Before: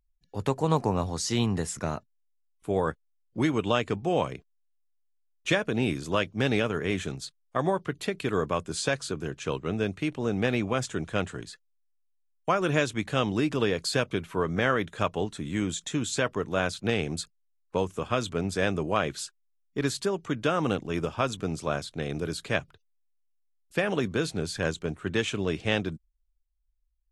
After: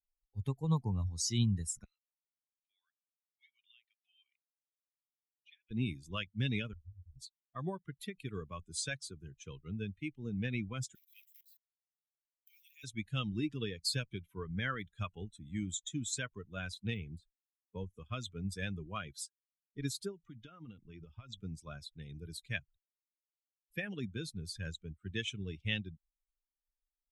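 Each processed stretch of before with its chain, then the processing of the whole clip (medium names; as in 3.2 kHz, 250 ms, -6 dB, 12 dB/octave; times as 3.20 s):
1.84–5.71 s: Butterworth band-pass 3.4 kHz, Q 1 + compression 2:1, threshold -50 dBFS + distance through air 61 m
6.73–7.16 s: inverse Chebyshev low-pass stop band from 530 Hz, stop band 80 dB + doubling 23 ms -11 dB
10.95–12.84 s: jump at every zero crossing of -31 dBFS + level held to a coarse grid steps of 16 dB + steep high-pass 2 kHz 48 dB/octave
16.94–17.97 s: de-esser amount 95% + treble shelf 4.2 kHz -5.5 dB
20.11–21.37 s: low-pass 6.3 kHz + compression 16:1, threshold -27 dBFS
whole clip: expander on every frequency bin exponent 2; amplifier tone stack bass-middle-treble 6-0-2; trim +14.5 dB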